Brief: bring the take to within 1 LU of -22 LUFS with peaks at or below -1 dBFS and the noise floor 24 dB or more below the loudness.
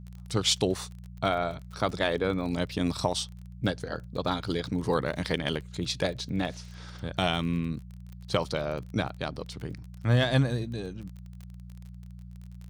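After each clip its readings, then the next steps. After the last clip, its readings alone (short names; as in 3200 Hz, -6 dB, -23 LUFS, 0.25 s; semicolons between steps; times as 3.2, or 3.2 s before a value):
ticks 29/s; hum 60 Hz; harmonics up to 180 Hz; hum level -41 dBFS; loudness -30.0 LUFS; peak -10.5 dBFS; loudness target -22.0 LUFS
-> de-click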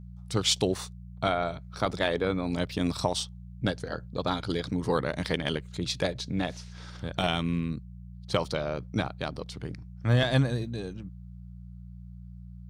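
ticks 0.079/s; hum 60 Hz; harmonics up to 180 Hz; hum level -41 dBFS
-> de-hum 60 Hz, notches 3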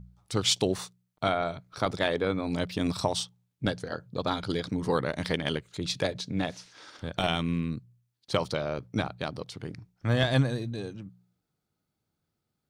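hum none; loudness -30.5 LUFS; peak -10.5 dBFS; loudness target -22.0 LUFS
-> gain +8.5 dB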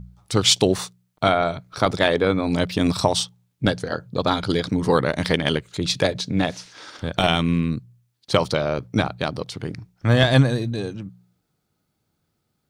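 loudness -22.0 LUFS; peak -2.0 dBFS; noise floor -74 dBFS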